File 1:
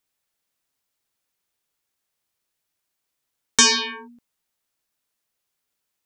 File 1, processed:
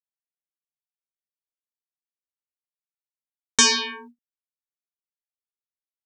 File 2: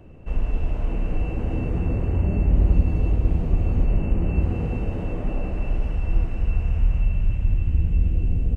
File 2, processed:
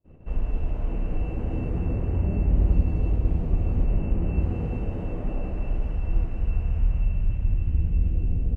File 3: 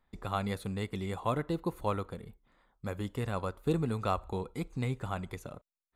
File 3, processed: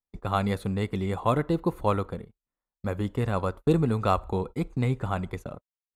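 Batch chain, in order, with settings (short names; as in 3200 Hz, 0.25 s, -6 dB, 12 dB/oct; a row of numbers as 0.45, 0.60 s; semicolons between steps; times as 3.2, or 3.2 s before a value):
gate -44 dBFS, range -32 dB; mismatched tape noise reduction decoder only; normalise peaks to -9 dBFS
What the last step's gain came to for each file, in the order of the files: -1.5, -2.5, +7.5 dB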